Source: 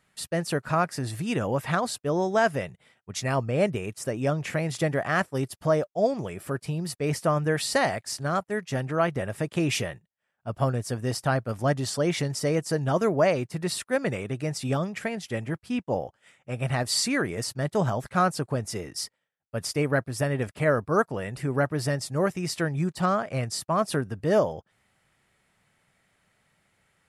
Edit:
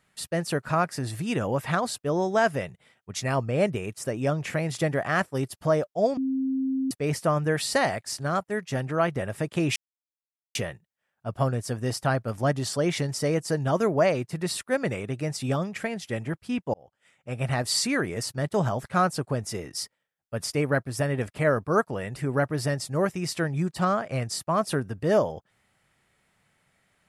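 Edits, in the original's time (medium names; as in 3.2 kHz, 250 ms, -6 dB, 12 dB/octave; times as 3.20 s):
6.17–6.91 s: bleep 265 Hz -23.5 dBFS
9.76 s: insert silence 0.79 s
15.95–16.58 s: fade in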